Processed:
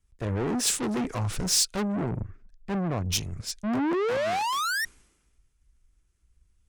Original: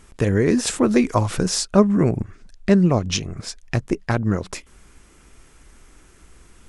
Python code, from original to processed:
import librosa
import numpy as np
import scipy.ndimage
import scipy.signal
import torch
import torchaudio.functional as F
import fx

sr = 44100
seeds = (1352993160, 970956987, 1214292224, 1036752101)

y = fx.spec_paint(x, sr, seeds[0], shape='rise', start_s=3.63, length_s=1.22, low_hz=200.0, high_hz=1900.0, level_db=-12.0)
y = fx.tube_stage(y, sr, drive_db=26.0, bias=0.4)
y = fx.band_widen(y, sr, depth_pct=100)